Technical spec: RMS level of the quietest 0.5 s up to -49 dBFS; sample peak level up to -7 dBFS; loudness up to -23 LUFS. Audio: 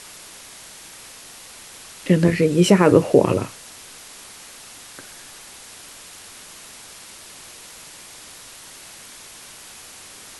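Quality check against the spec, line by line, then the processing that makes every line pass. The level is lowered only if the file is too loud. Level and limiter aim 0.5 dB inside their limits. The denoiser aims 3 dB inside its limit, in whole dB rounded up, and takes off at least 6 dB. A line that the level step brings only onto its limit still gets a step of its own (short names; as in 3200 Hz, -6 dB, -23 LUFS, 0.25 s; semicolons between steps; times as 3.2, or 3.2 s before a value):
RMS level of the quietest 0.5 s -42 dBFS: fail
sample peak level -2.0 dBFS: fail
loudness -17.0 LUFS: fail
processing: denoiser 6 dB, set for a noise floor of -42 dBFS; gain -6.5 dB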